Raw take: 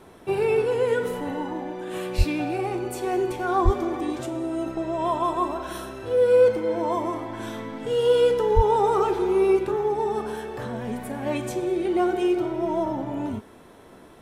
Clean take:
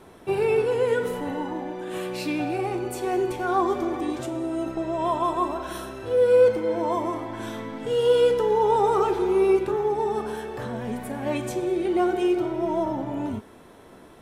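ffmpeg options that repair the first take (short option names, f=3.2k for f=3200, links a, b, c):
-filter_complex "[0:a]asplit=3[a][b][c];[a]afade=t=out:st=2.17:d=0.02[d];[b]highpass=f=140:w=0.5412,highpass=f=140:w=1.3066,afade=t=in:st=2.17:d=0.02,afade=t=out:st=2.29:d=0.02[e];[c]afade=t=in:st=2.29:d=0.02[f];[d][e][f]amix=inputs=3:normalize=0,asplit=3[g][h][i];[g]afade=t=out:st=3.64:d=0.02[j];[h]highpass=f=140:w=0.5412,highpass=f=140:w=1.3066,afade=t=in:st=3.64:d=0.02,afade=t=out:st=3.76:d=0.02[k];[i]afade=t=in:st=3.76:d=0.02[l];[j][k][l]amix=inputs=3:normalize=0,asplit=3[m][n][o];[m]afade=t=out:st=8.55:d=0.02[p];[n]highpass=f=140:w=0.5412,highpass=f=140:w=1.3066,afade=t=in:st=8.55:d=0.02,afade=t=out:st=8.67:d=0.02[q];[o]afade=t=in:st=8.67:d=0.02[r];[p][q][r]amix=inputs=3:normalize=0"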